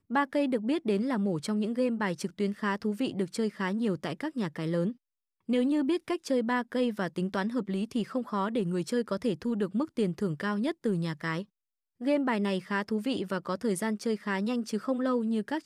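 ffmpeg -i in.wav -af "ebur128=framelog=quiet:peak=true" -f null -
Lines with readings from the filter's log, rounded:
Integrated loudness:
  I:         -30.5 LUFS
  Threshold: -40.6 LUFS
Loudness range:
  LRA:         1.3 LU
  Threshold: -50.9 LUFS
  LRA low:   -31.4 LUFS
  LRA high:  -30.1 LUFS
True peak:
  Peak:      -16.7 dBFS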